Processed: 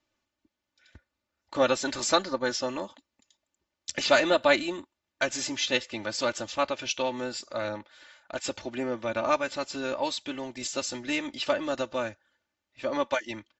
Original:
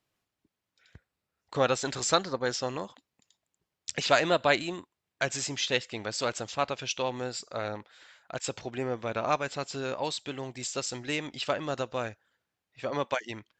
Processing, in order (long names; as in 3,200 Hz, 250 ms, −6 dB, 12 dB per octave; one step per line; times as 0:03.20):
Butterworth low-pass 7,400 Hz 72 dB per octave
comb filter 3.4 ms, depth 77%
AAC 48 kbit/s 32,000 Hz